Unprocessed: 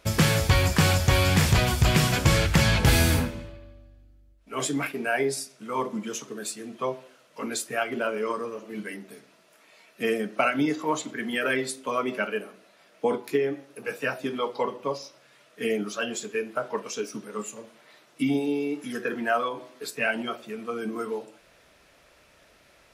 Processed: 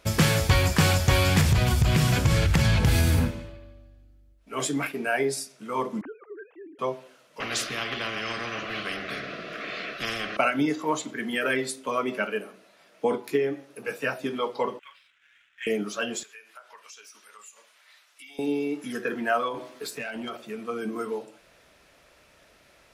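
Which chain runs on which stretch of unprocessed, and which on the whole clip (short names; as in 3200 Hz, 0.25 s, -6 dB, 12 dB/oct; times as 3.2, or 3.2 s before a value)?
1.4–3.32 bell 91 Hz +7 dB 2.3 oct + compressor 4:1, threshold -17 dBFS
6.01–6.79 sine-wave speech + LPF 1800 Hz 24 dB/oct + compressor 1.5:1, threshold -50 dBFS
7.4–10.37 Butterworth band-stop 900 Hz, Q 2.5 + air absorption 280 m + spectral compressor 10:1
14.79–15.67 Chebyshev band-pass 1500–3400 Hz, order 3 + air absorption 130 m + sample leveller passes 1
16.23–18.39 HPF 1400 Hz + compressor 2.5:1, threshold -48 dBFS
19.54–20.37 compressor 8:1, threshold -33 dBFS + sample leveller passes 1
whole clip: dry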